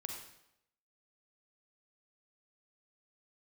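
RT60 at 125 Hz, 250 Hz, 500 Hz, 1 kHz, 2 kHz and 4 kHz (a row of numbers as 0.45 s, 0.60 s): 0.80 s, 0.80 s, 0.80 s, 0.80 s, 0.75 s, 0.70 s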